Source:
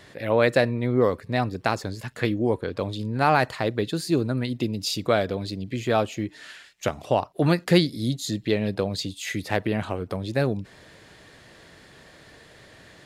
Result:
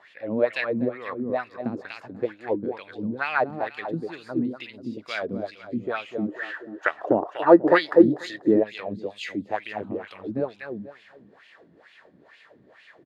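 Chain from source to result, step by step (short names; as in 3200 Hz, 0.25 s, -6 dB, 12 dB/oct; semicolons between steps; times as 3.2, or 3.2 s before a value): feedback echo 0.244 s, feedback 31%, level -7.5 dB; spectral gain 6.29–8.63, 300–2000 Hz +12 dB; wah 2.2 Hz 210–2800 Hz, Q 3.4; gain +5 dB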